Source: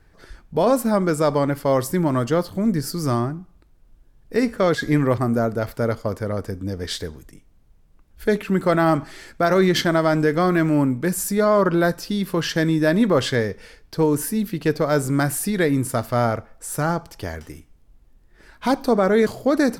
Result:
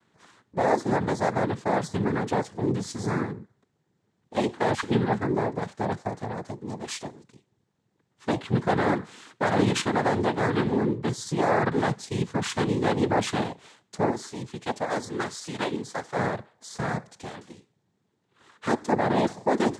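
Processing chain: 14.10–16.16 s: high-pass 460 Hz 6 dB/octave; noise-vocoded speech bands 6; trim -5.5 dB

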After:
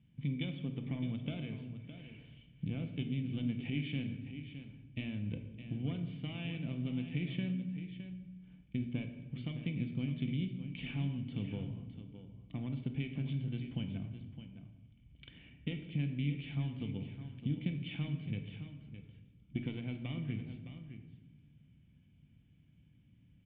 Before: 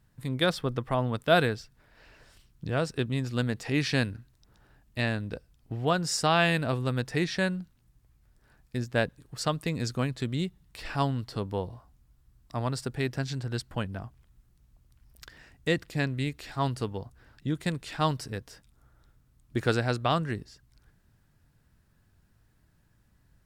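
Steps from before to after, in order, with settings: single-diode clipper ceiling -24.5 dBFS; high-pass 87 Hz; peaking EQ 320 Hz -14 dB 0.99 oct; compression 12:1, threshold -39 dBFS, peak gain reduction 19 dB; cascade formant filter i; on a send: delay 613 ms -11 dB; on the sum: simulated room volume 730 m³, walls mixed, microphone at 0.78 m; trim +15.5 dB

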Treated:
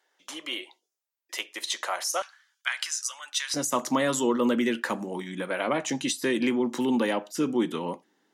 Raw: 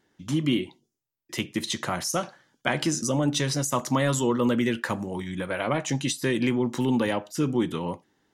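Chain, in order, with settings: high-pass 520 Hz 24 dB/octave, from 2.22 s 1.3 kHz, from 3.54 s 200 Hz

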